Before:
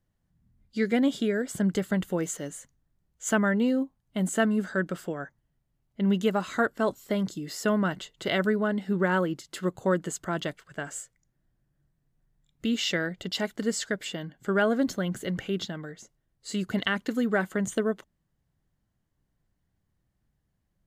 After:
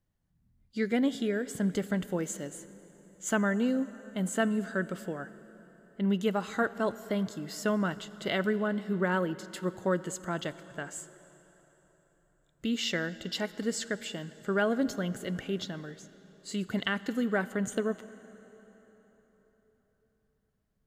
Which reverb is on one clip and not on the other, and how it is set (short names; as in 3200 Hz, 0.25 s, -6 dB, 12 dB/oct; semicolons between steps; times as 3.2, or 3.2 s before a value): plate-style reverb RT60 4.3 s, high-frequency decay 0.75×, DRR 15.5 dB; gain -3.5 dB